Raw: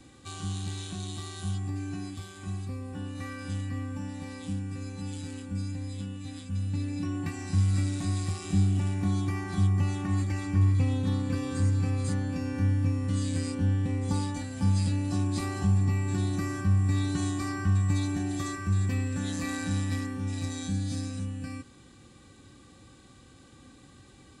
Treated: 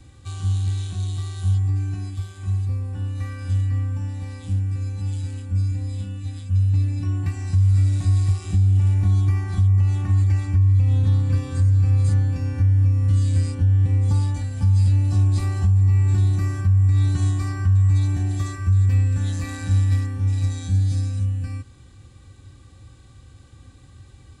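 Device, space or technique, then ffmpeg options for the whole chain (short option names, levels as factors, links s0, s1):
car stereo with a boomy subwoofer: -filter_complex "[0:a]asettb=1/sr,asplit=3[s0][s1][s2];[s0]atrim=end=5.684[s3];[s1]atrim=start=5.68:end=6.23,asetpts=PTS-STARTPTS,afade=t=in:d=0.004:c=qsin,afade=t=out:st=0.546:d=0.004:c=qsin,asplit=2[s4][s5];[s5]adelay=35,volume=0.562[s6];[s4][s6]amix=inputs=2:normalize=0,atrim=end_sample=24255[s7];[s2]atrim=start=6.226[s8];[s3][s7]acrossfade=d=0.004:c1=hsin:c2=qsin[s9];[s9][s8]acrossfade=d=0.004:c1=qsin:c2=hsin,lowshelf=f=140:t=q:w=1.5:g=11,alimiter=limit=0.266:level=0:latency=1:release=154"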